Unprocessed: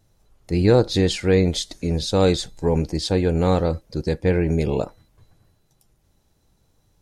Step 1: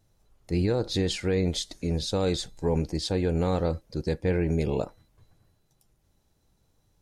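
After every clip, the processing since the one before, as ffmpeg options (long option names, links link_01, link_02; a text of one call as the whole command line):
ffmpeg -i in.wav -af "alimiter=limit=-11dB:level=0:latency=1:release=52,volume=-5dB" out.wav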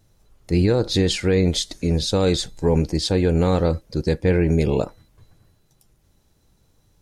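ffmpeg -i in.wav -af "equalizer=frequency=750:width_type=o:width=0.77:gain=-2.5,volume=7.5dB" out.wav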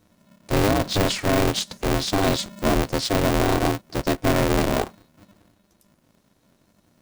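ffmpeg -i in.wav -af "aeval=exprs='val(0)*sgn(sin(2*PI*200*n/s))':channel_layout=same,volume=-2dB" out.wav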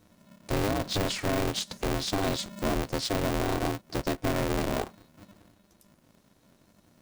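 ffmpeg -i in.wav -af "acompressor=threshold=-31dB:ratio=2" out.wav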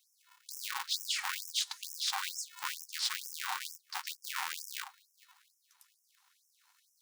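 ffmpeg -i in.wav -af "afftfilt=real='re*gte(b*sr/1024,730*pow(5300/730,0.5+0.5*sin(2*PI*2.2*pts/sr)))':imag='im*gte(b*sr/1024,730*pow(5300/730,0.5+0.5*sin(2*PI*2.2*pts/sr)))':win_size=1024:overlap=0.75" out.wav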